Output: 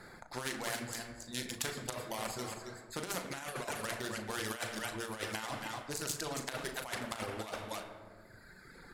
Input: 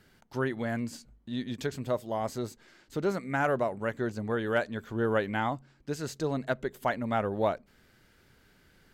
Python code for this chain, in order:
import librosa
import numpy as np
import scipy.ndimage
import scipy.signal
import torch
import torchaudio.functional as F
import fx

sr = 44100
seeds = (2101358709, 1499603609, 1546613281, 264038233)

p1 = fx.wiener(x, sr, points=15)
p2 = fx.peak_eq(p1, sr, hz=9800.0, db=13.0, octaves=1.3)
p3 = p2 + fx.echo_single(p2, sr, ms=273, db=-9.0, dry=0)
p4 = fx.room_shoebox(p3, sr, seeds[0], volume_m3=390.0, walls='mixed', distance_m=0.84)
p5 = fx.dereverb_blind(p4, sr, rt60_s=1.5)
p6 = fx.low_shelf(p5, sr, hz=420.0, db=-11.0)
p7 = fx.over_compress(p6, sr, threshold_db=-36.0, ratio=-0.5)
p8 = fx.doubler(p7, sr, ms=37.0, db=-12.5)
p9 = fx.spectral_comp(p8, sr, ratio=2.0)
y = p9 * librosa.db_to_amplitude(3.5)